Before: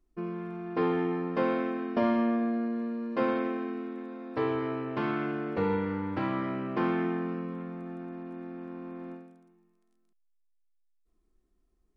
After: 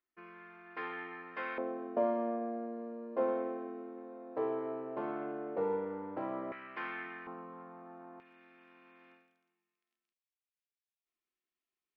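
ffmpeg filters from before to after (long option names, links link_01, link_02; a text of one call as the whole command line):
ffmpeg -i in.wav -af "asetnsamples=nb_out_samples=441:pad=0,asendcmd='1.58 bandpass f 600;6.52 bandpass f 2000;7.27 bandpass f 900;8.2 bandpass f 2600',bandpass=frequency=1900:width_type=q:width=1.9:csg=0" out.wav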